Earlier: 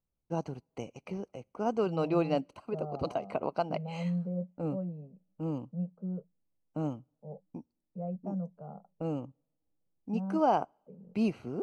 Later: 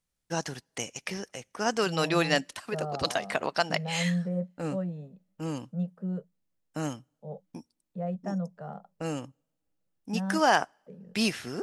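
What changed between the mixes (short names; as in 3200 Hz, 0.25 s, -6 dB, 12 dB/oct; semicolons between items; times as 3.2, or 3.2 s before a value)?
second voice +3.5 dB; master: remove running mean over 25 samples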